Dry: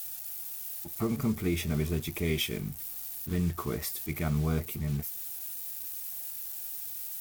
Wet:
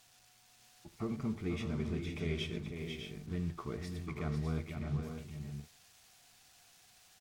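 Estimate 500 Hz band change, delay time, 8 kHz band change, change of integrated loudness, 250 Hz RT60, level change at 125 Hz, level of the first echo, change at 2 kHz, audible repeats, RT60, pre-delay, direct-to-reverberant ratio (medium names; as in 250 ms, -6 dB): -6.0 dB, 76 ms, -18.0 dB, -6.5 dB, no reverb, -6.0 dB, -15.5 dB, -7.0 dB, 4, no reverb, no reverb, no reverb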